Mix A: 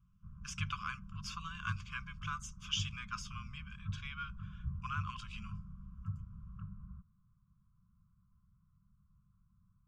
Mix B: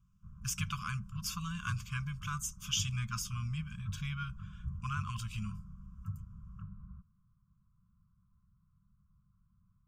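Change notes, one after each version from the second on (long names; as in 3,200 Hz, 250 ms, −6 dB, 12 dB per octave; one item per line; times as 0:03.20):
speech: remove band-pass filter 390–4,000 Hz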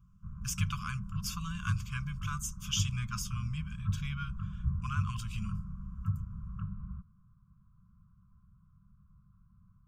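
background +8.0 dB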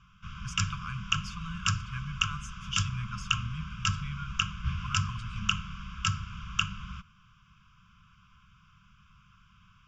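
background: remove Bessel low-pass filter 510 Hz, order 4
master: add high-frequency loss of the air 130 metres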